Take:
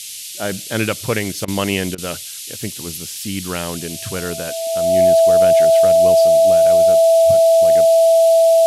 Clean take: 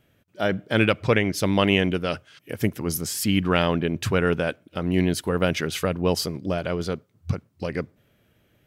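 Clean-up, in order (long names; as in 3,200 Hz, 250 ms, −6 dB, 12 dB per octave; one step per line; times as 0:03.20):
notch filter 660 Hz, Q 30
repair the gap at 0:01.45/0:01.95, 29 ms
noise reduction from a noise print 30 dB
level 0 dB, from 0:02.44 +4 dB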